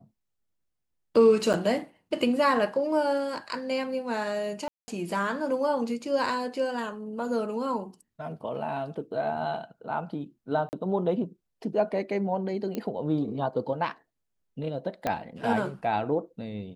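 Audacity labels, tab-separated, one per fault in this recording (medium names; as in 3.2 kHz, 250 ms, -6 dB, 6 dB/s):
1.530000	1.540000	dropout 7.4 ms
4.680000	4.880000	dropout 200 ms
10.690000	10.730000	dropout 39 ms
12.750000	12.750000	pop -19 dBFS
15.070000	15.070000	pop -14 dBFS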